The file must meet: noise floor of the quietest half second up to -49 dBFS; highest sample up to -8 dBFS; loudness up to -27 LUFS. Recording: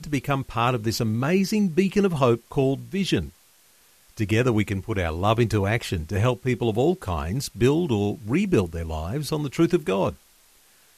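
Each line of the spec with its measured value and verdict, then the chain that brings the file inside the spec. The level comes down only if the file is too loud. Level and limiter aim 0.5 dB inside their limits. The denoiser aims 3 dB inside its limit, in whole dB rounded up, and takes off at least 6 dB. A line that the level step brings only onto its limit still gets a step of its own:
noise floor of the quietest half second -57 dBFS: pass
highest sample -6.0 dBFS: fail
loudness -24.0 LUFS: fail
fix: trim -3.5 dB

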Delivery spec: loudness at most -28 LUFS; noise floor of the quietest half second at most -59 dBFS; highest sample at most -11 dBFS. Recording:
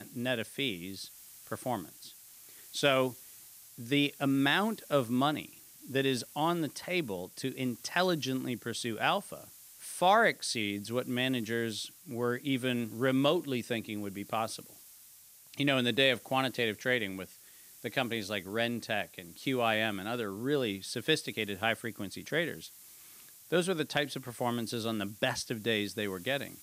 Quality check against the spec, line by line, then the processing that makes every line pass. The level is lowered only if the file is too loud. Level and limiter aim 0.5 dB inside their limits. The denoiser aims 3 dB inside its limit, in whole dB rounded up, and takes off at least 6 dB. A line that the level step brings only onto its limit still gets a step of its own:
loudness -32.0 LUFS: pass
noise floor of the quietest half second -56 dBFS: fail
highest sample -13.0 dBFS: pass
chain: noise reduction 6 dB, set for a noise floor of -56 dBFS

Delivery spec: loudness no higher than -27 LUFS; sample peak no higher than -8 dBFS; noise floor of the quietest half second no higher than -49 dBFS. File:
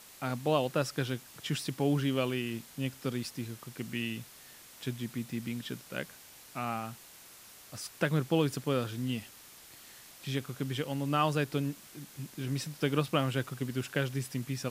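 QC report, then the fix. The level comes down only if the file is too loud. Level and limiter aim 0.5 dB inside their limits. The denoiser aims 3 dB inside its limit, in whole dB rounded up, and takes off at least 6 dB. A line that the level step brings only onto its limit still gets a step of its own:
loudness -34.0 LUFS: pass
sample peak -13.5 dBFS: pass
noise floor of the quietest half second -53 dBFS: pass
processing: none needed

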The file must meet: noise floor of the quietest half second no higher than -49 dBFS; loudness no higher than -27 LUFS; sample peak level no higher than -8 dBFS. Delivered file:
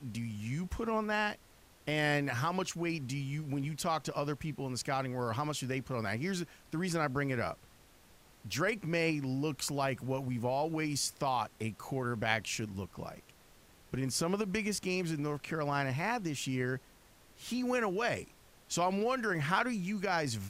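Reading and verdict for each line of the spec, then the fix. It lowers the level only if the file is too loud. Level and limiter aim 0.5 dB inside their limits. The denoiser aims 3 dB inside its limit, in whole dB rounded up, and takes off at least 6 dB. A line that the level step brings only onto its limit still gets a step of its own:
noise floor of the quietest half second -61 dBFS: pass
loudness -34.5 LUFS: pass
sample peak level -13.5 dBFS: pass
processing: none needed

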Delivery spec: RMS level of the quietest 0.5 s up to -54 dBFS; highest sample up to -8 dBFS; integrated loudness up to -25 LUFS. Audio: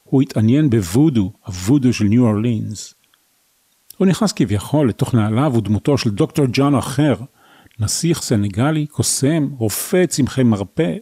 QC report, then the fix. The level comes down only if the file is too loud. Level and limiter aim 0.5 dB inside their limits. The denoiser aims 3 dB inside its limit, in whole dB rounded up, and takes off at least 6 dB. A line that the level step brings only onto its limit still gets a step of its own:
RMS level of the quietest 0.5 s -61 dBFS: pass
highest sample -5.5 dBFS: fail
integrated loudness -17.0 LUFS: fail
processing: trim -8.5 dB

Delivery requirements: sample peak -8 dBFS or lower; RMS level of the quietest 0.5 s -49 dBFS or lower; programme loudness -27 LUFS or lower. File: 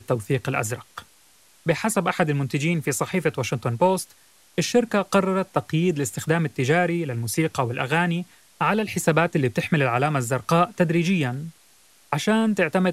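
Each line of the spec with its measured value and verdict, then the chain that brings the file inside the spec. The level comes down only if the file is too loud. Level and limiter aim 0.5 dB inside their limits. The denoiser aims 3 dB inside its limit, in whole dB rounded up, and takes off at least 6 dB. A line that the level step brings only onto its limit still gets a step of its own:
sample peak -5.0 dBFS: fail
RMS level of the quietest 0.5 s -56 dBFS: pass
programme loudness -23.0 LUFS: fail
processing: trim -4.5 dB

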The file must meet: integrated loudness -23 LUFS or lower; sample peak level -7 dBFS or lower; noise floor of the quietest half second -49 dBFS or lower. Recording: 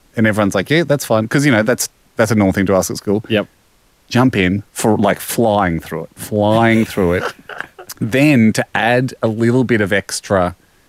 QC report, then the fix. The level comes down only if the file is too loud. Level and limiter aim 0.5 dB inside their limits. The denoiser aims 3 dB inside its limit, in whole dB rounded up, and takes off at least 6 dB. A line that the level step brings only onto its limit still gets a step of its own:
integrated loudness -15.0 LUFS: fail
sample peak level -2.5 dBFS: fail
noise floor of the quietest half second -54 dBFS: pass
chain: trim -8.5 dB

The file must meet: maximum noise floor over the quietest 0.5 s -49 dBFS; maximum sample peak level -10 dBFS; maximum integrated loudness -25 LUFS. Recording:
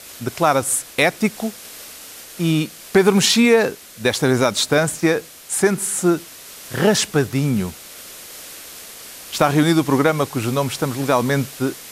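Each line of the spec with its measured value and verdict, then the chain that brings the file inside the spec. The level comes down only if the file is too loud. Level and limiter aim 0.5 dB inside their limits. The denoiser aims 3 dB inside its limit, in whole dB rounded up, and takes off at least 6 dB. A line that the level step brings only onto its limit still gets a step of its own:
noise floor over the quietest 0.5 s -39 dBFS: fail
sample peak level -3.0 dBFS: fail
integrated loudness -18.5 LUFS: fail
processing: noise reduction 6 dB, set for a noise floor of -39 dBFS; trim -7 dB; peak limiter -10.5 dBFS

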